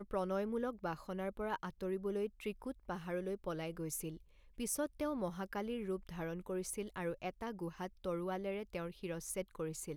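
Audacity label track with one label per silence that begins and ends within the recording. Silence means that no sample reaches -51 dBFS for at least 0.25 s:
4.170000	4.580000	silence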